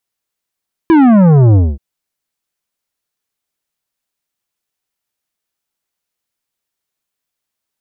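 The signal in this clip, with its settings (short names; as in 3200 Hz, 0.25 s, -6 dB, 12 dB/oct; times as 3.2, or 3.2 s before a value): sub drop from 340 Hz, over 0.88 s, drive 11.5 dB, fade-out 0.23 s, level -5.5 dB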